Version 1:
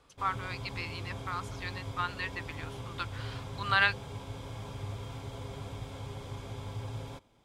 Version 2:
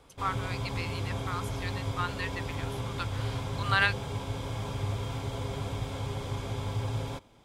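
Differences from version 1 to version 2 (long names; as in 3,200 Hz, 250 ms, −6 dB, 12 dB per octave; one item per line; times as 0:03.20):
speech: remove low-pass filter 6,800 Hz
background +7.0 dB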